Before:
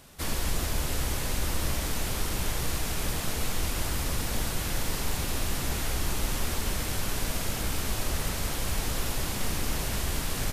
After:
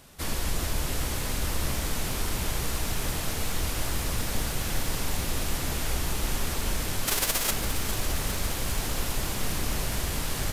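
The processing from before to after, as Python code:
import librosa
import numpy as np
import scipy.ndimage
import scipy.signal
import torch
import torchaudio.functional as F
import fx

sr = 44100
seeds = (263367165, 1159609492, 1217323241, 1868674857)

y = fx.envelope_flatten(x, sr, power=0.3, at=(7.06, 7.5), fade=0.02)
y = fx.echo_crushed(y, sr, ms=405, feedback_pct=80, bits=8, wet_db=-11.0)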